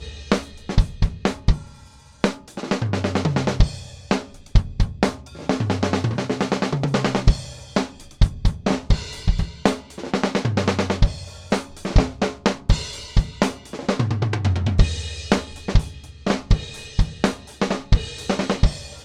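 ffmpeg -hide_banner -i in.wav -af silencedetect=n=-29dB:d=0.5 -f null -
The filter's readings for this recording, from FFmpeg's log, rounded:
silence_start: 1.62
silence_end: 2.24 | silence_duration: 0.62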